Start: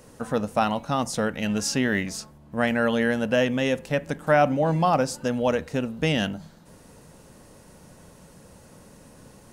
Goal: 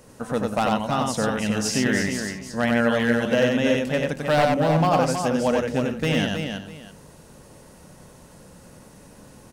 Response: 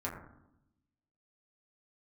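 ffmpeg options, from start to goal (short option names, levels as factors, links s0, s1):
-filter_complex "[0:a]aeval=exprs='0.2*(abs(mod(val(0)/0.2+3,4)-2)-1)':c=same,asplit=2[s0][s1];[s1]aecho=0:1:94|319|409|648:0.708|0.473|0.133|0.112[s2];[s0][s2]amix=inputs=2:normalize=0"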